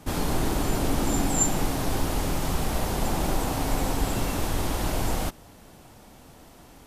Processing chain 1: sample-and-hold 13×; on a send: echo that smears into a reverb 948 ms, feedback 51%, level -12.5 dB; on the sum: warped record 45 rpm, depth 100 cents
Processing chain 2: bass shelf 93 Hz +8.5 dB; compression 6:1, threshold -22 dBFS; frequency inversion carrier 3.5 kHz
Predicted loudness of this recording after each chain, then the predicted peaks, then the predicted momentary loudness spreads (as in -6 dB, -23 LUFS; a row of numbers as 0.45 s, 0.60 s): -27.5 LUFS, -20.0 LUFS; -11.0 dBFS, -10.5 dBFS; 14 LU, 1 LU